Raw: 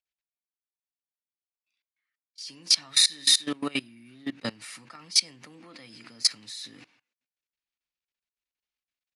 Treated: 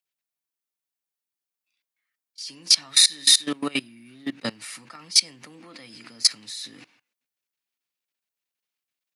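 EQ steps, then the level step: high-pass 110 Hz; treble shelf 10 kHz +6 dB; +3.0 dB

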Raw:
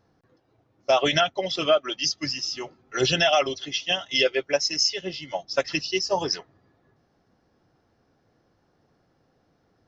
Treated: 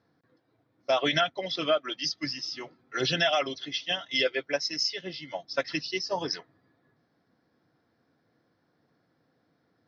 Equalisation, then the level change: cabinet simulation 160–4700 Hz, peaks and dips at 200 Hz -4 dB, 390 Hz -7 dB, 580 Hz -5 dB, 820 Hz -7 dB, 1.2 kHz -4 dB, 2.8 kHz -8 dB; 0.0 dB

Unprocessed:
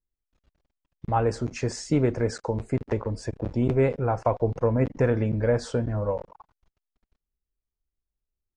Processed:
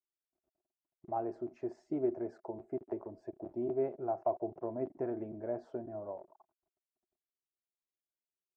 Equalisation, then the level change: two resonant band-passes 490 Hz, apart 0.83 oct; -3.0 dB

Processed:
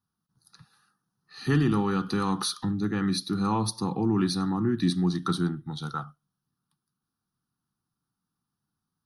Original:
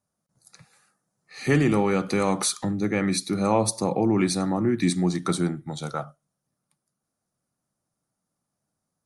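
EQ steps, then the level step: static phaser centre 2.2 kHz, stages 6; 0.0 dB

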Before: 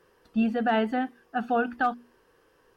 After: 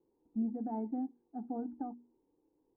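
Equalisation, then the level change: cascade formant filter u; -1.5 dB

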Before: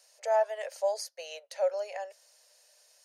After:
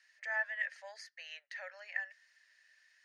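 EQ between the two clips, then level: ladder band-pass 1.9 kHz, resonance 80%; +8.5 dB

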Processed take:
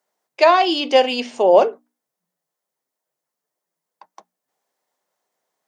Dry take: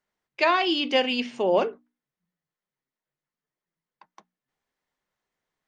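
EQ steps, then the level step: high-pass 170 Hz 12 dB/octave; tone controls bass +1 dB, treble +14 dB; peaking EQ 670 Hz +14 dB 1.9 oct; -2.5 dB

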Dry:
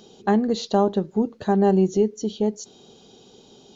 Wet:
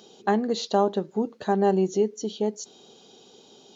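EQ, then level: high-pass 350 Hz 6 dB/octave; 0.0 dB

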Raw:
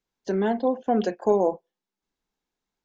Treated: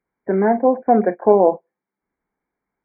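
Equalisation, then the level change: high-pass 67 Hz 6 dB/octave; dynamic bell 680 Hz, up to +4 dB, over -32 dBFS, Q 1.9; brick-wall FIR low-pass 2.4 kHz; +6.5 dB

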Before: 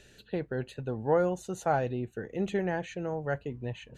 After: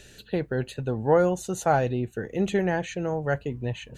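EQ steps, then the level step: bass shelf 140 Hz +3 dB; treble shelf 4.4 kHz +6.5 dB; +5.0 dB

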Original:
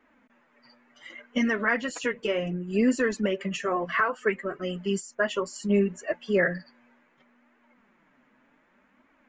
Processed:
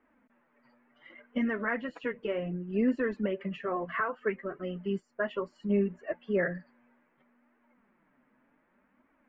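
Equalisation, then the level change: distance through air 480 m; -3.5 dB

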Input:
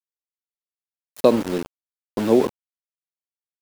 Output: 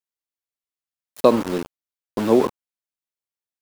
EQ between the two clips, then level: dynamic bell 1.1 kHz, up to +6 dB, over -37 dBFS, Q 2.2; 0.0 dB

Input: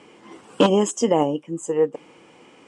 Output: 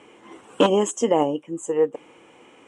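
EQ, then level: peaking EQ 170 Hz -6 dB 0.84 oct; peaking EQ 4.8 kHz -12.5 dB 0.32 oct; 0.0 dB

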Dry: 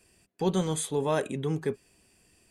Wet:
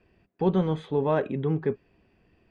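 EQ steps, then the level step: low-pass 2.5 kHz 6 dB/octave; distance through air 300 m; +4.0 dB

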